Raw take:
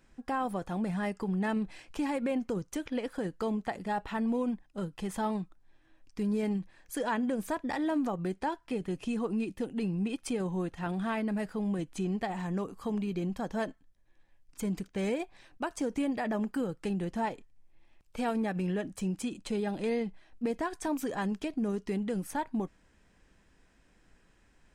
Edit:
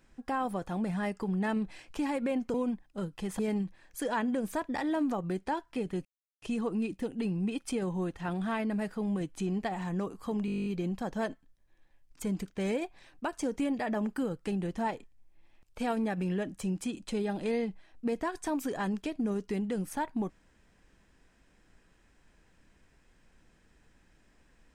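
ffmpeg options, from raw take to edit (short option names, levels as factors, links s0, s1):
-filter_complex "[0:a]asplit=14[s0][s1][s2][s3][s4][s5][s6][s7][s8][s9][s10][s11][s12][s13];[s0]atrim=end=2.542[s14];[s1]atrim=start=4.338:end=5.192[s15];[s2]atrim=start=6.338:end=9,asetpts=PTS-STARTPTS,afade=t=out:st=2.658:d=0.004:c=hsin,apad=pad_dur=0.37[s16];[s3]atrim=start=9:end=13.062,asetpts=PTS-STARTPTS,afade=t=in:d=0.004:c=hsin[s17];[s4]atrim=start=13.038:end=13.062[s18];[s5]atrim=start=13.038:end=13.062[s19];[s6]atrim=start=13.038:end=13.062[s20];[s7]atrim=start=13.038:end=13.062[s21];[s8]atrim=start=13.038:end=13.062[s22];[s9]atrim=start=13.038:end=13.062[s23];[s10]atrim=start=13.038:end=13.062[s24];[s11]atrim=start=13.038:end=13.062[s25];[s12]atrim=start=13.038:end=13.062[s26];[s13]atrim=start=13.038[s27];[s14][s15]acrossfade=d=0.004:c1=hsin:c2=hsin[s28];[s16][s17]concat=n=2:v=0:a=1[s29];[s28][s29]acrossfade=d=0.004:c1=hsin:c2=hsin[s30];[s30][s18]acrossfade=d=0.004:c1=hsin:c2=hsin[s31];[s31][s19]acrossfade=d=0.004:c1=hsin:c2=hsin[s32];[s32][s20]acrossfade=d=0.004:c1=hsin:c2=hsin[s33];[s33][s21]acrossfade=d=0.004:c1=hsin:c2=hsin[s34];[s34][s22]acrossfade=d=0.004:c1=hsin:c2=hsin[s35];[s35][s23]acrossfade=d=0.004:c1=hsin:c2=hsin[s36];[s36][s24]acrossfade=d=0.004:c1=hsin:c2=hsin[s37];[s37][s25]acrossfade=d=0.004:c1=hsin:c2=hsin[s38];[s38][s26]acrossfade=d=0.004:c1=hsin:c2=hsin[s39];[s39][s27]acrossfade=d=0.004:c1=hsin:c2=hsin"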